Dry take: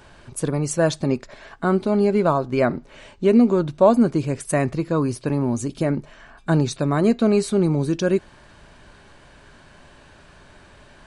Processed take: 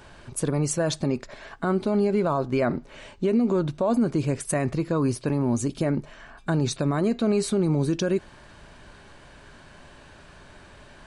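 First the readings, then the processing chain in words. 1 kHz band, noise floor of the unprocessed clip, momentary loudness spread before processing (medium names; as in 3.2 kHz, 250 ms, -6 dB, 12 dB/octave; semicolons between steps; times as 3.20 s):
-5.5 dB, -50 dBFS, 9 LU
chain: peak limiter -15 dBFS, peak gain reduction 11.5 dB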